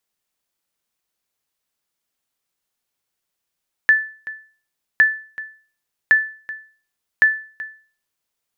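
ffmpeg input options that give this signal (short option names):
-f lavfi -i "aevalsrc='0.531*(sin(2*PI*1750*mod(t,1.11))*exp(-6.91*mod(t,1.11)/0.41)+0.133*sin(2*PI*1750*max(mod(t,1.11)-0.38,0))*exp(-6.91*max(mod(t,1.11)-0.38,0)/0.41))':d=4.44:s=44100"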